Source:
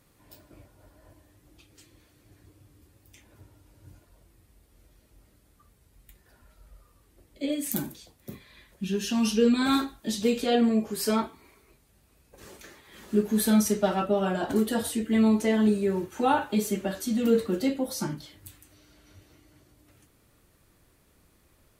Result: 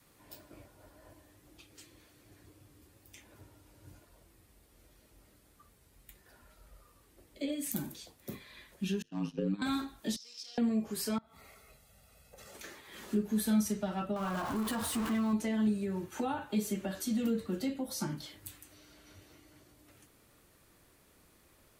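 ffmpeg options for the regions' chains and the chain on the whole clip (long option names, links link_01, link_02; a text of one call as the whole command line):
ffmpeg -i in.wav -filter_complex "[0:a]asettb=1/sr,asplit=3[link_01][link_02][link_03];[link_01]atrim=end=9.024[link_04];[link_02]atrim=start=9.02:end=9.62,asetpts=PTS-STARTPTS,afade=type=in:duration=0.004:curve=qsin,afade=type=out:start_time=0.596:duration=0.004:curve=qsin,agate=range=-33dB:threshold=-20dB:ratio=3:release=100:detection=peak,lowpass=frequency=1300:poles=1,aeval=exprs='val(0)*sin(2*PI*51*n/s)':channel_layout=same[link_05];[link_03]atrim=start=9.616[link_06];[link_04][link_05]acrossfade=duration=0.004:curve1=hsin:curve2=qsin[link_07];[link_07][link_06]acrossfade=duration=0.004:curve1=qsin:curve2=hsin,asettb=1/sr,asplit=3[link_08][link_09][link_10];[link_08]atrim=end=10.164[link_11];[link_09]atrim=start=10.16:end=10.58,asetpts=PTS-STARTPTS,afade=type=in:duration=0.004:curve=qsin,afade=type=out:start_time=0.416:duration=0.004:curve=qsin,aeval=exprs='val(0)+0.5*0.0447*sgn(val(0))':channel_layout=same,bandpass=frequency=5300:width_type=q:width=15[link_12];[link_10]atrim=start=10.576[link_13];[link_11][link_12]acrossfade=duration=0.004:curve1=hsin:curve2=qsin[link_14];[link_14][link_13]acrossfade=duration=0.004:curve1=qsin:curve2=hsin,asettb=1/sr,asplit=3[link_15][link_16][link_17];[link_15]atrim=end=11.184[link_18];[link_16]atrim=start=11.18:end=12.55,asetpts=PTS-STARTPTS,afade=type=in:duration=0.004:curve=qsin,afade=type=out:start_time=1.366:duration=0.004:curve=qsin,aecho=1:1:1.5:0.85,atrim=end_sample=60417,acompressor=threshold=-48dB:ratio=16:attack=3.2:release=140:knee=1:detection=peak[link_19];[link_17]atrim=start=12.546[link_20];[link_18][link_19]acrossfade=duration=0.004:curve1=hsin:curve2=qsin[link_21];[link_21][link_20]acrossfade=duration=0.004:curve1=qsin:curve2=hsin,asettb=1/sr,asplit=3[link_22][link_23][link_24];[link_22]atrim=end=14.164[link_25];[link_23]atrim=start=14.16:end=15.33,asetpts=PTS-STARTPTS,afade=type=in:duration=0.004:curve=qsin,afade=type=out:start_time=1.166:duration=0.004:curve=qsin,aeval=exprs='val(0)+0.5*0.0447*sgn(val(0))':channel_layout=same,equalizer=frequency=1100:width=2.2:gain=13,acompressor=threshold=-23dB:ratio=3:attack=3.2:release=140:knee=1:detection=peak[link_26];[link_24]atrim=start=15.326[link_27];[link_25][link_26]acrossfade=duration=0.004:curve1=hsin:curve2=qsin[link_28];[link_28][link_27]acrossfade=duration=0.004:curve1=qsin:curve2=hsin,lowshelf=frequency=180:gain=-7,acrossover=split=200[link_29][link_30];[link_30]acompressor=threshold=-37dB:ratio=4[link_31];[link_29][link_31]amix=inputs=2:normalize=0,adynamicequalizer=threshold=0.00398:dfrequency=440:dqfactor=2.2:tfrequency=440:tqfactor=2.2:attack=5:release=100:ratio=0.375:range=2.5:mode=cutabove:tftype=bell,volume=1dB" out.wav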